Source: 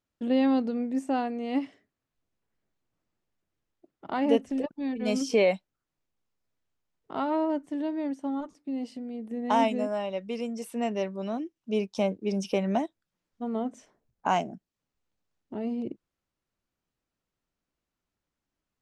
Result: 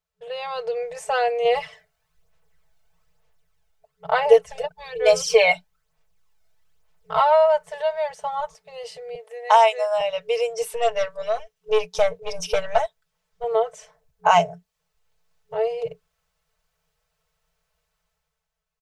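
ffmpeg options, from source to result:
-filter_complex "[0:a]asettb=1/sr,asplit=3[a][b][c];[a]atrim=end=1.454[d];[b]atrim=start=1.45:end=7.21,asetpts=PTS-STARTPTS,afade=t=in:d=0.004:c=qsin,afade=t=out:st=5.756:d=0.004:c=qsin,aphaser=in_gain=1:out_gain=1:delay=1.4:decay=0.46:speed=1.1:type=sinusoidal[e];[c]atrim=start=7.206[f];[d][e]acrossfade=d=0.004:c1=hsin:c2=qsin[g];[g][f]acrossfade=d=0.004:c1=qsin:c2=hsin,asettb=1/sr,asplit=3[h][i][j];[h]atrim=end=9.154[k];[i]atrim=start=9.15:end=10.01,asetpts=PTS-STARTPTS,afade=t=in:d=0.004:c=qsin,afade=t=out:st=0.856:d=0.004:c=qsin,highpass=700[l];[j]atrim=start=10.006[m];[k][l]acrossfade=d=0.004:c1=hsin:c2=qsin[n];[n][m]acrossfade=d=0.004:c1=qsin:c2=hsin,asettb=1/sr,asplit=3[o][p][q];[o]atrim=end=10.624[r];[p]atrim=start=10.62:end=13.44,asetpts=PTS-STARTPTS,afade=t=in:d=0.004:c=qsin,afade=t=out:st=2.816:d=0.004:c=qsin,aeval=exprs='(tanh(11.2*val(0)+0.5)-tanh(0.5))/11.2':c=same[s];[q]atrim=start=13.436[t];[r][s]acrossfade=d=0.004:c1=hsin:c2=qsin[u];[u][t]acrossfade=d=0.004:c1=qsin:c2=hsin,afftfilt=real='re*(1-between(b*sr/4096,180,430))':imag='im*(1-between(b*sr/4096,180,430))':win_size=4096:overlap=0.75,aecho=1:1:4.6:0.76,dynaudnorm=f=120:g=13:m=12dB,volume=-1dB"

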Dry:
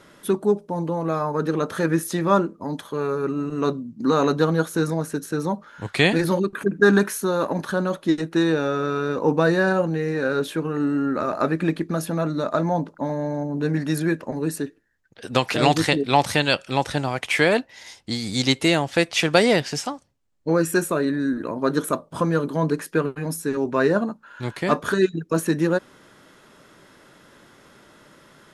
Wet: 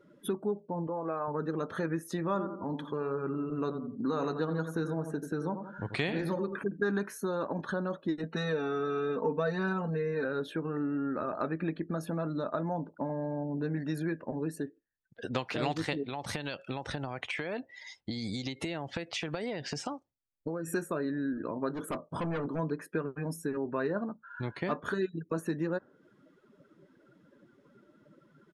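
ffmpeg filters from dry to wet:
-filter_complex "[0:a]asettb=1/sr,asplit=3[a][b][c];[a]atrim=end=0.874[d];[b]atrim=start=0.87:end=1.28,asetpts=PTS-STARTPTS,afade=t=in:d=0.004:c=qsin,afade=t=out:st=0.406:d=0.004:c=qsin,bass=f=250:g=-12,treble=f=4k:g=-10[e];[c]atrim=start=1.276[f];[d][e]acrossfade=d=0.004:c1=hsin:c2=qsin[g];[g][f]acrossfade=d=0.004:c1=qsin:c2=hsin,asplit=3[h][i][j];[h]afade=t=out:st=2.33:d=0.02[k];[i]asplit=2[l][m];[m]adelay=86,lowpass=f=3k:p=1,volume=-9dB,asplit=2[n][o];[o]adelay=86,lowpass=f=3k:p=1,volume=0.37,asplit=2[p][q];[q]adelay=86,lowpass=f=3k:p=1,volume=0.37,asplit=2[r][s];[s]adelay=86,lowpass=f=3k:p=1,volume=0.37[t];[l][n][p][r][t]amix=inputs=5:normalize=0,afade=t=in:st=2.33:d=0.02,afade=t=out:st=6.58:d=0.02[u];[j]afade=t=in:st=6.58:d=0.02[v];[k][u][v]amix=inputs=3:normalize=0,asettb=1/sr,asplit=3[w][x][y];[w]atrim=end=8.234[z];[x]atrim=start=8.23:end=10.25,asetpts=PTS-STARTPTS,afade=t=in:d=0.004:c=qsin,afade=t=out:st=2.016:d=0.004:c=qsin,aecho=1:1:4.5:0.94,atrim=end_sample=89082[aa];[y]atrim=start=10.246[ab];[z][aa]acrossfade=d=0.004:c1=hsin:c2=qsin[ac];[ac][ab]acrossfade=d=0.004:c1=qsin:c2=hsin,asettb=1/sr,asplit=3[ad][ae][af];[ad]atrim=end=16.044[ag];[ae]atrim=start=16.04:end=20.68,asetpts=PTS-STARTPTS,afade=t=in:d=0.004:c=qsin,afade=t=out:st=4.636:d=0.004:c=qsin,acompressor=threshold=-24dB:ratio=16:attack=3.2:release=140:knee=1:detection=peak[ah];[af]atrim=start=20.676[ai];[ag][ah]acrossfade=d=0.004:c1=hsin:c2=qsin[aj];[aj][ai]acrossfade=d=0.004:c1=qsin:c2=hsin,asplit=3[ak][al][am];[ak]afade=t=out:st=21.73:d=0.02[an];[al]asoftclip=type=hard:threshold=-24.5dB,afade=t=in:st=21.73:d=0.02,afade=t=out:st=22.58:d=0.02[ao];[am]afade=t=in:st=22.58:d=0.02[ap];[an][ao][ap]amix=inputs=3:normalize=0,afftdn=nr=21:nf=-42,lowpass=f=4k:p=1,acompressor=threshold=-35dB:ratio=2.5"

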